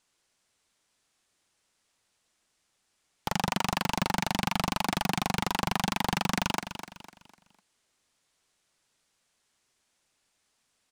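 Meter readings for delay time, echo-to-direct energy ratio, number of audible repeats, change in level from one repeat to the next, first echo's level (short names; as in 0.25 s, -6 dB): 0.251 s, -10.0 dB, 3, -8.5 dB, -10.5 dB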